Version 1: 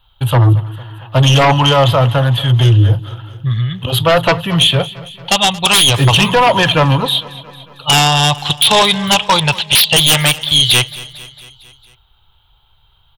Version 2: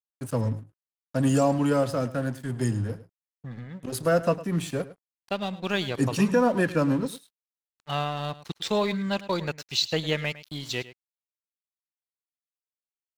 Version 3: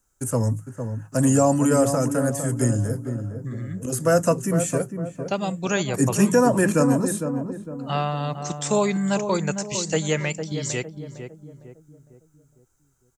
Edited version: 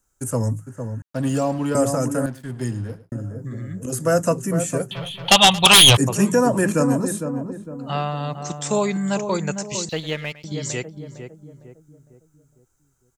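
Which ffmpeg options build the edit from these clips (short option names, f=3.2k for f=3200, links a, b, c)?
-filter_complex "[1:a]asplit=3[a][b][c];[2:a]asplit=5[d][e][f][g][h];[d]atrim=end=1.022[i];[a]atrim=start=1.018:end=1.752[j];[e]atrim=start=1.748:end=2.262[k];[b]atrim=start=2.258:end=3.122[l];[f]atrim=start=3.118:end=4.912[m];[0:a]atrim=start=4.908:end=5.972[n];[g]atrim=start=5.968:end=9.892[o];[c]atrim=start=9.888:end=10.442[p];[h]atrim=start=10.438[q];[i][j]acrossfade=d=0.004:c1=hsin:c2=hsin[r];[r][k]acrossfade=d=0.004:c1=hsin:c2=hsin[s];[s][l]acrossfade=d=0.004:c1=hsin:c2=hsin[t];[t][m]acrossfade=d=0.004:c1=hsin:c2=hsin[u];[u][n]acrossfade=d=0.004:c1=hsin:c2=hsin[v];[v][o]acrossfade=d=0.004:c1=hsin:c2=hsin[w];[w][p]acrossfade=d=0.004:c1=hsin:c2=hsin[x];[x][q]acrossfade=d=0.004:c1=hsin:c2=hsin"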